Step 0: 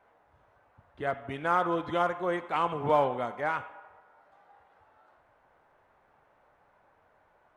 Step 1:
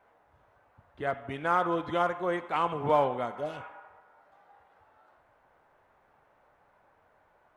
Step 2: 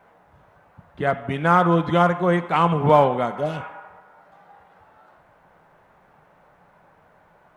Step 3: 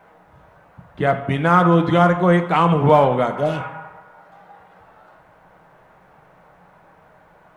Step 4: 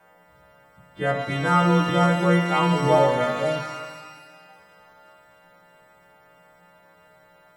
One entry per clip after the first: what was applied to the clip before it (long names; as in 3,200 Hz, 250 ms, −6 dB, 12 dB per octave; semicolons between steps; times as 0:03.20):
healed spectral selection 0:03.37–0:03.60, 760–2,500 Hz
parametric band 170 Hz +12 dB 0.5 octaves; level +9 dB
in parallel at −2 dB: brickwall limiter −13 dBFS, peak gain reduction 10 dB; on the sum: rectangular room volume 350 cubic metres, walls furnished, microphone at 0.58 metres; level −1 dB
every partial snapped to a pitch grid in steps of 2 semitones; reverb with rising layers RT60 1.4 s, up +12 semitones, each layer −8 dB, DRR 4 dB; level −7 dB